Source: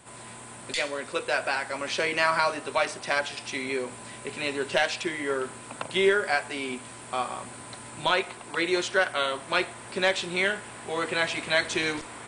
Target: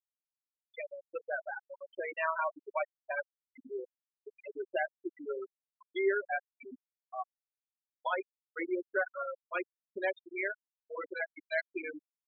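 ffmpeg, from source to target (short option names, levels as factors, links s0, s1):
-af "afftfilt=real='re*gte(hypot(re,im),0.2)':imag='im*gte(hypot(re,im),0.2)':win_size=1024:overlap=0.75,lowpass=3100,volume=0.447"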